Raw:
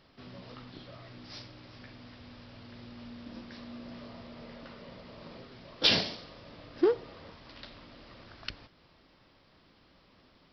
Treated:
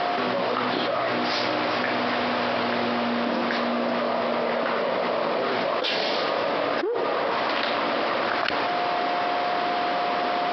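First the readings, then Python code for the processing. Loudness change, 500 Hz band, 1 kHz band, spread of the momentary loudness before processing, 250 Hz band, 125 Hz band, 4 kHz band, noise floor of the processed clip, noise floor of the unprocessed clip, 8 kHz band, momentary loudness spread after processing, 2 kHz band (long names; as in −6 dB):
+7.5 dB, +14.0 dB, +25.5 dB, 22 LU, +12.0 dB, +6.0 dB, +6.0 dB, −26 dBFS, −63 dBFS, can't be measured, 1 LU, +17.0 dB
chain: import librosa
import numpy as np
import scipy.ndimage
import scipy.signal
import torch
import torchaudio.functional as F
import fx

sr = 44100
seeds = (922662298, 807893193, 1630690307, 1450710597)

p1 = scipy.signal.sosfilt(scipy.signal.butter(2, 530.0, 'highpass', fs=sr, output='sos'), x)
p2 = fx.high_shelf(p1, sr, hz=2400.0, db=-11.5)
p3 = 10.0 ** (-26.5 / 20.0) * np.tanh(p2 / 10.0 ** (-26.5 / 20.0))
p4 = p2 + (p3 * librosa.db_to_amplitude(-6.0))
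p5 = p4 + 10.0 ** (-64.0 / 20.0) * np.sin(2.0 * np.pi * 710.0 * np.arange(len(p4)) / sr)
p6 = fx.air_absorb(p5, sr, metres=110.0)
y = fx.env_flatten(p6, sr, amount_pct=100)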